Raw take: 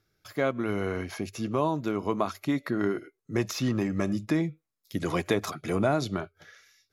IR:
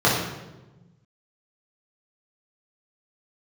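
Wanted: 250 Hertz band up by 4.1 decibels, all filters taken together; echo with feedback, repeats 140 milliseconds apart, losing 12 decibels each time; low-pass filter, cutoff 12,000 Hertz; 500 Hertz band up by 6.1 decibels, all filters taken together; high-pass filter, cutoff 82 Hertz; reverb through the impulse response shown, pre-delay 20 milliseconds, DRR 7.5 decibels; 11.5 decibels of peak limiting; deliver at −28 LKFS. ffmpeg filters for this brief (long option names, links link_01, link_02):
-filter_complex "[0:a]highpass=82,lowpass=12000,equalizer=frequency=250:width_type=o:gain=3,equalizer=frequency=500:width_type=o:gain=7,alimiter=limit=-19dB:level=0:latency=1,aecho=1:1:140|280|420:0.251|0.0628|0.0157,asplit=2[link_01][link_02];[1:a]atrim=start_sample=2205,adelay=20[link_03];[link_02][link_03]afir=irnorm=-1:irlink=0,volume=-28dB[link_04];[link_01][link_04]amix=inputs=2:normalize=0,volume=0.5dB"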